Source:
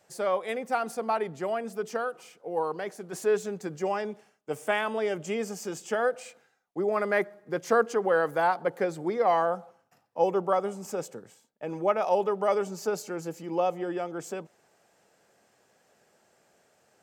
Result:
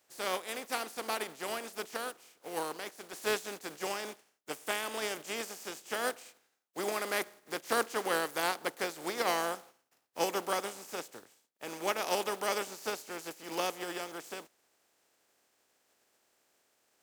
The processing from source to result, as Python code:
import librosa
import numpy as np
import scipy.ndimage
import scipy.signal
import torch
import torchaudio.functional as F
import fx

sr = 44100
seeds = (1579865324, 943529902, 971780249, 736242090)

y = fx.spec_flatten(x, sr, power=0.43)
y = fx.low_shelf_res(y, sr, hz=220.0, db=-6.0, q=1.5)
y = y * 10.0 ** (-7.5 / 20.0)